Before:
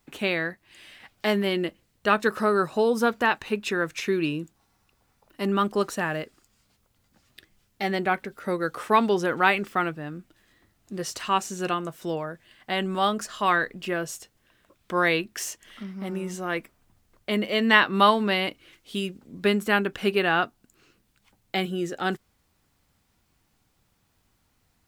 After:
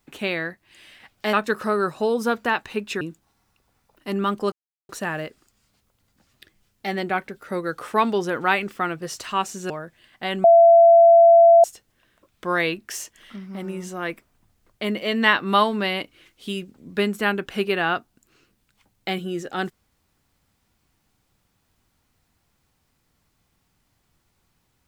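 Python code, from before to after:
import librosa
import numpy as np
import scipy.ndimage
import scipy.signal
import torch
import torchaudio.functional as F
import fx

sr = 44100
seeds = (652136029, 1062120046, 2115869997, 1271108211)

y = fx.edit(x, sr, fx.cut(start_s=1.33, length_s=0.76),
    fx.cut(start_s=3.77, length_s=0.57),
    fx.insert_silence(at_s=5.85, length_s=0.37),
    fx.cut(start_s=9.98, length_s=1.0),
    fx.cut(start_s=11.66, length_s=0.51),
    fx.bleep(start_s=12.91, length_s=1.2, hz=675.0, db=-8.0), tone=tone)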